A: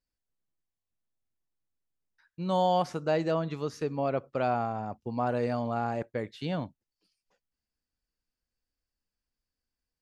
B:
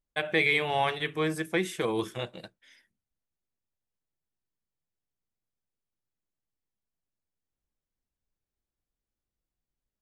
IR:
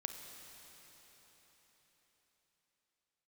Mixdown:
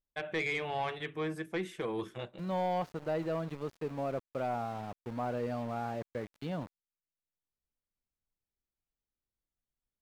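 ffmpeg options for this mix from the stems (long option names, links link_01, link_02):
-filter_complex "[0:a]aeval=exprs='val(0)*gte(abs(val(0)),0.0112)':channel_layout=same,volume=-4.5dB,asplit=2[link_01][link_02];[1:a]volume=-5.5dB[link_03];[link_02]apad=whole_len=441626[link_04];[link_03][link_04]sidechaincompress=threshold=-45dB:ratio=8:attack=16:release=1170[link_05];[link_01][link_05]amix=inputs=2:normalize=0,highshelf=frequency=4400:gain=-11.5,asoftclip=type=tanh:threshold=-25dB"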